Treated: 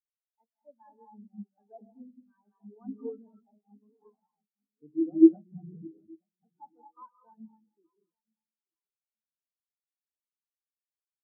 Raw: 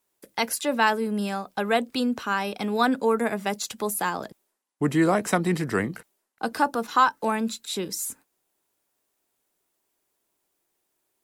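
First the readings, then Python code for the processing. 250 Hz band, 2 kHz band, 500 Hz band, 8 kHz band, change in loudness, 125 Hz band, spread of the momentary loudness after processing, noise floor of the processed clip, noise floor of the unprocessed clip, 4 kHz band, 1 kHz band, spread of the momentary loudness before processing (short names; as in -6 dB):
-2.0 dB, under -40 dB, -10.0 dB, under -40 dB, +0.5 dB, -20.0 dB, 24 LU, under -85 dBFS, -77 dBFS, under -40 dB, under -30 dB, 11 LU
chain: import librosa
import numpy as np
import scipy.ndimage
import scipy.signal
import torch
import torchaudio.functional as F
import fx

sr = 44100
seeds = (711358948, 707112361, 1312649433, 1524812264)

p1 = fx.cvsd(x, sr, bps=16000)
p2 = fx.hum_notches(p1, sr, base_hz=60, count=8)
p3 = fx.level_steps(p2, sr, step_db=18)
p4 = p2 + (p3 * 10.0 ** (0.0 / 20.0))
p5 = np.sign(p4) * np.maximum(np.abs(p4) - 10.0 ** (-41.5 / 20.0), 0.0)
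p6 = fx.vibrato(p5, sr, rate_hz=2.1, depth_cents=38.0)
p7 = p6 + fx.echo_feedback(p6, sr, ms=875, feedback_pct=50, wet_db=-9.5, dry=0)
p8 = fx.rev_gated(p7, sr, seeds[0], gate_ms=270, shape='rising', drr_db=0.5)
y = fx.spectral_expand(p8, sr, expansion=4.0)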